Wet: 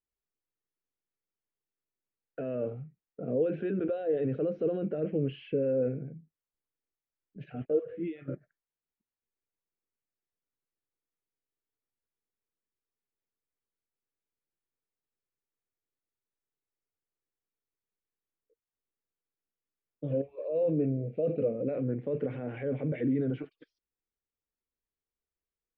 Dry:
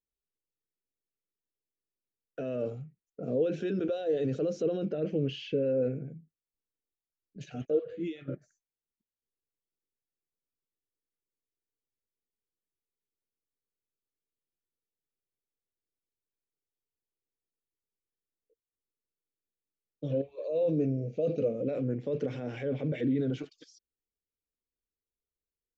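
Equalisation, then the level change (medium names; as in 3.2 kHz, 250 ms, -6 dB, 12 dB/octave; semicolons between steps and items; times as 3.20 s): low-pass 2.4 kHz 24 dB/octave; 0.0 dB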